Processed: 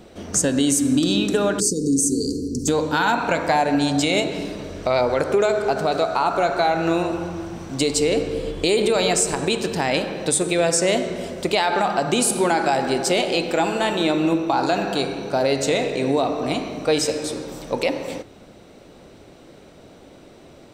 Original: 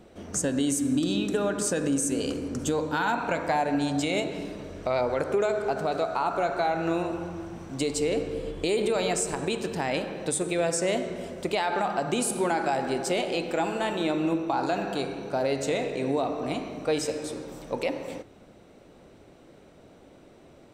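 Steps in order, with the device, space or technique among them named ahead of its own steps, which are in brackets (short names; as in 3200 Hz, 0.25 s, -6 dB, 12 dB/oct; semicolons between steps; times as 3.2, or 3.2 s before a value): presence and air boost (bell 4500 Hz +4.5 dB 1.2 oct; high shelf 12000 Hz +4 dB); 1.6–2.68 Chebyshev band-stop 450–4400 Hz, order 5; gain +6.5 dB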